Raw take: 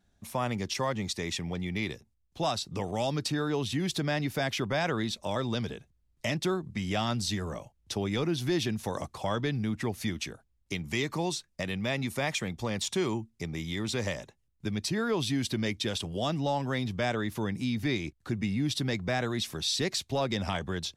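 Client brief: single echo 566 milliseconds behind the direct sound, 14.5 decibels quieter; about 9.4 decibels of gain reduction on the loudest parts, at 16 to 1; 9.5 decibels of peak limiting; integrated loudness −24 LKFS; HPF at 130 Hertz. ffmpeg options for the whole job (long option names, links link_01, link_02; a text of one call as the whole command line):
ffmpeg -i in.wav -af "highpass=130,acompressor=threshold=-34dB:ratio=16,alimiter=level_in=6.5dB:limit=-24dB:level=0:latency=1,volume=-6.5dB,aecho=1:1:566:0.188,volume=16.5dB" out.wav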